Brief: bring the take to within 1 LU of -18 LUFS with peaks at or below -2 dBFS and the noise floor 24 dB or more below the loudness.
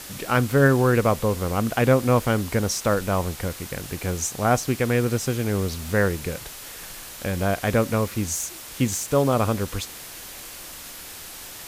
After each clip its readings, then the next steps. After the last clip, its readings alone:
noise floor -39 dBFS; noise floor target -47 dBFS; loudness -23.0 LUFS; peak -5.5 dBFS; loudness target -18.0 LUFS
-> noise print and reduce 8 dB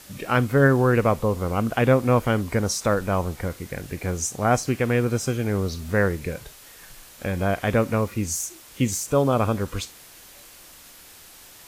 noise floor -47 dBFS; noise floor target -48 dBFS
-> noise print and reduce 6 dB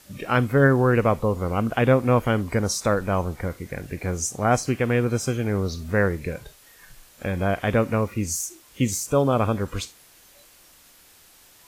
noise floor -53 dBFS; loudness -23.5 LUFS; peak -5.5 dBFS; loudness target -18.0 LUFS
-> gain +5.5 dB; limiter -2 dBFS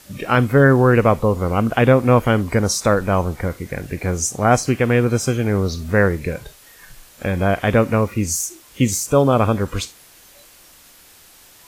loudness -18.0 LUFS; peak -2.0 dBFS; noise floor -48 dBFS

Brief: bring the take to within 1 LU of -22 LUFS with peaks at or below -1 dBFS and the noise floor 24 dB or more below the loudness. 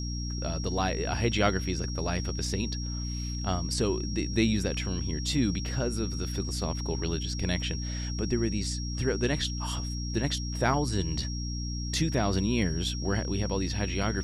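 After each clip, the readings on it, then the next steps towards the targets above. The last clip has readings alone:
hum 60 Hz; harmonics up to 300 Hz; hum level -31 dBFS; steady tone 5600 Hz; tone level -39 dBFS; loudness -30.0 LUFS; peak -9.0 dBFS; loudness target -22.0 LUFS
-> notches 60/120/180/240/300 Hz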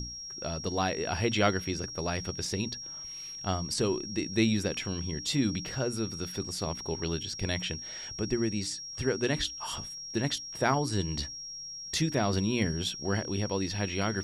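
hum none; steady tone 5600 Hz; tone level -39 dBFS
-> notch 5600 Hz, Q 30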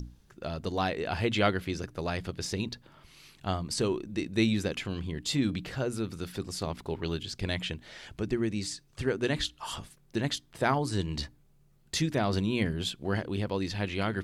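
steady tone none; loudness -32.0 LUFS; peak -9.5 dBFS; loudness target -22.0 LUFS
-> gain +10 dB; limiter -1 dBFS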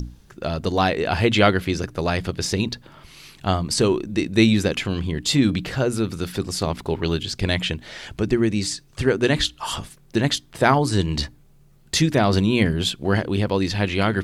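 loudness -22.0 LUFS; peak -1.0 dBFS; noise floor -52 dBFS

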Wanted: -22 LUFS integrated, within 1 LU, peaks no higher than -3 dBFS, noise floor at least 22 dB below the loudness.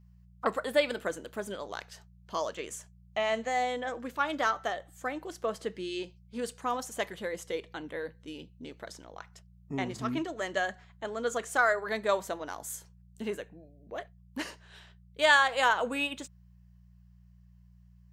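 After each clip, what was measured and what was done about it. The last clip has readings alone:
hum 60 Hz; harmonics up to 180 Hz; hum level -54 dBFS; loudness -32.0 LUFS; peak -10.0 dBFS; loudness target -22.0 LUFS
-> de-hum 60 Hz, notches 3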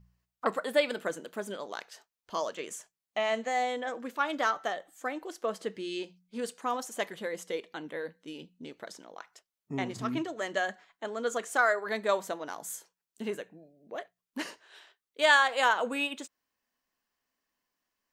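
hum none; loudness -31.5 LUFS; peak -10.0 dBFS; loudness target -22.0 LUFS
-> gain +9.5 dB; limiter -3 dBFS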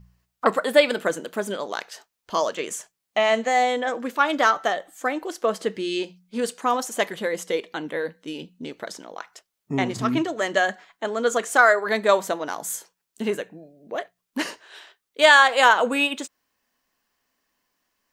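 loudness -22.5 LUFS; peak -3.0 dBFS; noise floor -81 dBFS

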